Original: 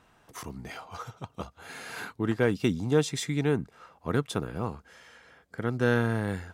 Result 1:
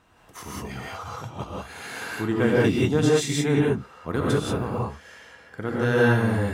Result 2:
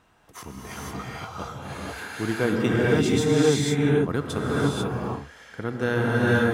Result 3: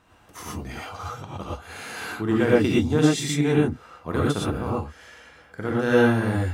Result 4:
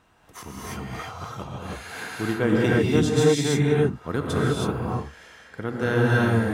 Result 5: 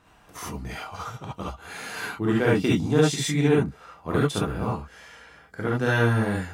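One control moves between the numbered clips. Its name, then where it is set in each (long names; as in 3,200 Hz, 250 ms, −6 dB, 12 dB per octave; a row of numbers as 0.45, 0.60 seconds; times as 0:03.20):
reverb whose tail is shaped and stops, gate: 210, 520, 140, 350, 90 milliseconds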